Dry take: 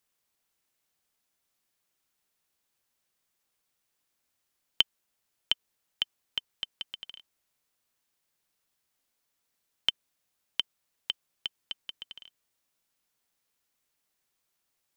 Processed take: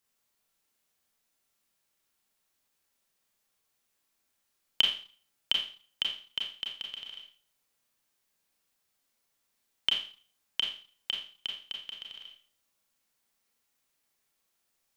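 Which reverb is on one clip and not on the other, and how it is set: Schroeder reverb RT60 0.42 s, combs from 28 ms, DRR -0.5 dB; trim -1.5 dB

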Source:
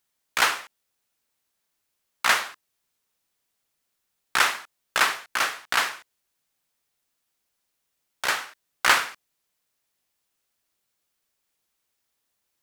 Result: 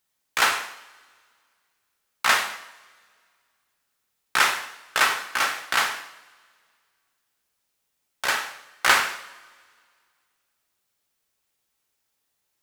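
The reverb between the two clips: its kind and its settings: two-slope reverb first 0.68 s, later 2.1 s, from -19 dB, DRR 4.5 dB

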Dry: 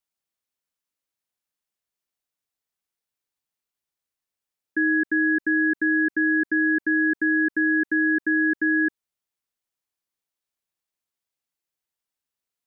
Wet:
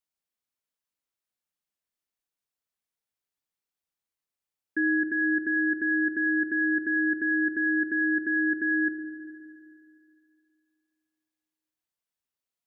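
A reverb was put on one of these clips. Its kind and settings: spring tank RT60 2.5 s, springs 32/52 ms, chirp 35 ms, DRR 6.5 dB; trim -4 dB

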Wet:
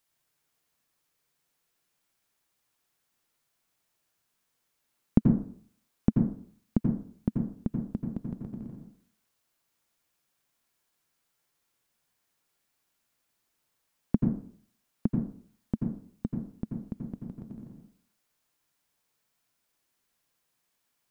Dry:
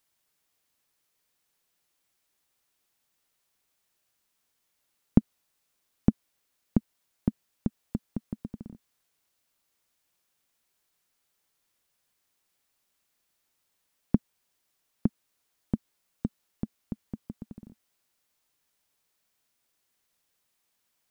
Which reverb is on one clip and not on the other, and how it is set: plate-style reverb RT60 0.53 s, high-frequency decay 0.25×, pre-delay 75 ms, DRR 1.5 dB; trim -2 dB

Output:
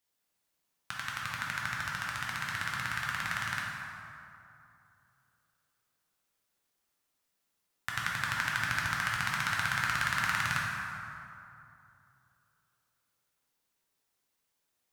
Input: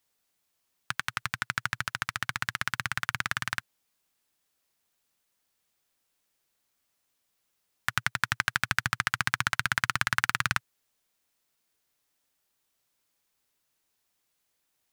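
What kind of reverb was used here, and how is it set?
plate-style reverb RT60 2.8 s, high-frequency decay 0.5×, DRR -4.5 dB; trim -8 dB

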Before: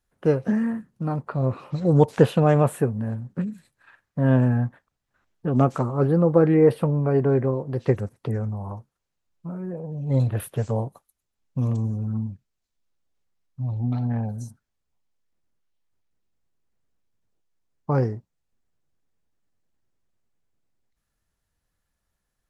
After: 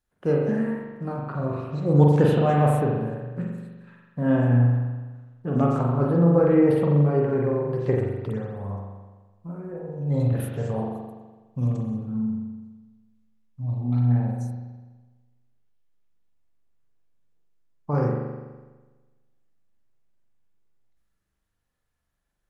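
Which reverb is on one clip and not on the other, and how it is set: spring tank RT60 1.3 s, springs 41 ms, chirp 25 ms, DRR -2 dB; trim -4.5 dB

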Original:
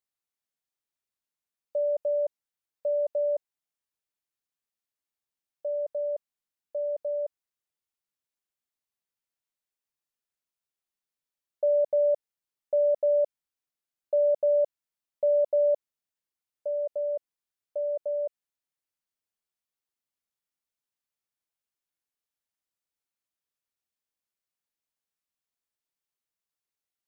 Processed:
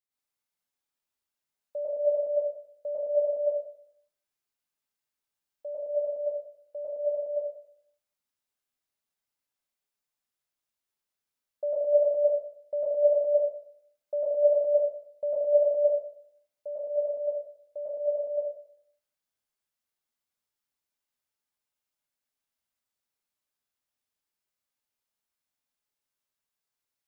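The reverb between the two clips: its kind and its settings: plate-style reverb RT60 0.67 s, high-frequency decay 0.9×, pre-delay 90 ms, DRR -8.5 dB; trim -6 dB

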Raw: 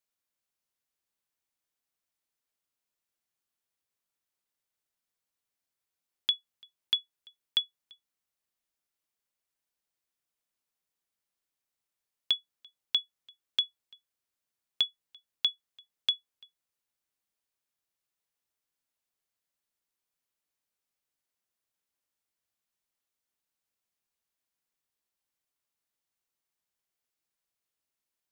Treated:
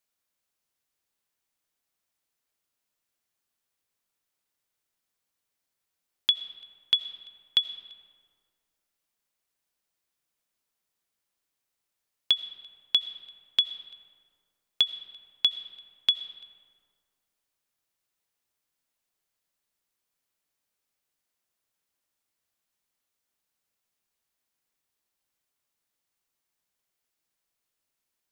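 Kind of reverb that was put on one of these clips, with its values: algorithmic reverb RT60 2 s, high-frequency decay 0.5×, pre-delay 45 ms, DRR 12.5 dB; trim +4.5 dB

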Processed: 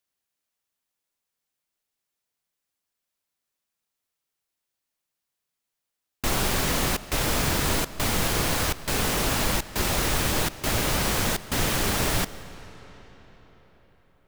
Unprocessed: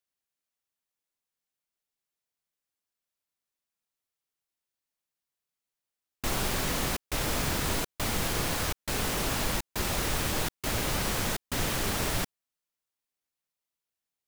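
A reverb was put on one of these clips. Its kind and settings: algorithmic reverb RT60 4.9 s, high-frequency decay 0.75×, pre-delay 80 ms, DRR 15.5 dB; trim +5 dB

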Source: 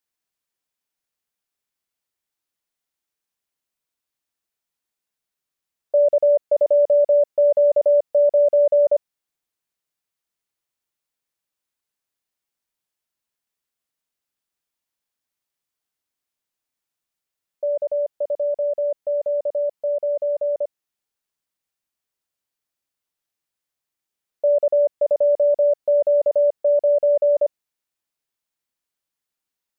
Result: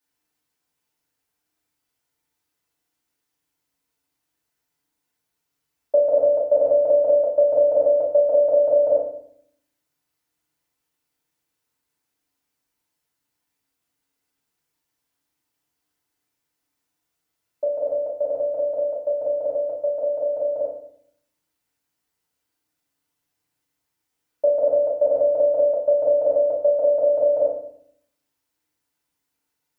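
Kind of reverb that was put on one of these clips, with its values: FDN reverb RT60 0.64 s, low-frequency decay 1.55×, high-frequency decay 0.55×, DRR -8 dB; trim -1.5 dB

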